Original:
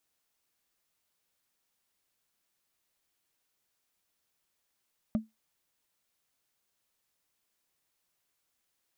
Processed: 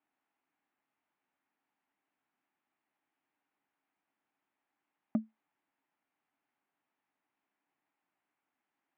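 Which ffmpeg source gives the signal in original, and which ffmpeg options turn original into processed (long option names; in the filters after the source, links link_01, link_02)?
-f lavfi -i "aevalsrc='0.0891*pow(10,-3*t/0.18)*sin(2*PI*220*t)+0.0282*pow(10,-3*t/0.053)*sin(2*PI*606.5*t)+0.00891*pow(10,-3*t/0.024)*sin(2*PI*1188.9*t)+0.00282*pow(10,-3*t/0.013)*sin(2*PI*1965.3*t)+0.000891*pow(10,-3*t/0.008)*sin(2*PI*2934.8*t)':duration=0.45:sample_rate=44100"
-af "highpass=180,equalizer=frequency=280:width_type=q:width=4:gain=9,equalizer=frequency=500:width_type=q:width=4:gain=-7,equalizer=frequency=820:width_type=q:width=4:gain=7,lowpass=frequency=2400:width=0.5412,lowpass=frequency=2400:width=1.3066"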